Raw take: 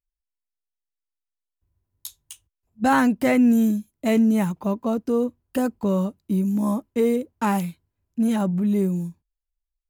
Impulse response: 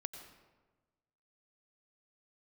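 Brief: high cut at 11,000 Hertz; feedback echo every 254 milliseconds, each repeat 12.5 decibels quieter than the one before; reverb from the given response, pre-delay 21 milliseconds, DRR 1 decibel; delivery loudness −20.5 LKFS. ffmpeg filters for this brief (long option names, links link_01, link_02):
-filter_complex "[0:a]lowpass=11000,aecho=1:1:254|508|762:0.237|0.0569|0.0137,asplit=2[link_01][link_02];[1:a]atrim=start_sample=2205,adelay=21[link_03];[link_02][link_03]afir=irnorm=-1:irlink=0,volume=1dB[link_04];[link_01][link_04]amix=inputs=2:normalize=0,volume=-1dB"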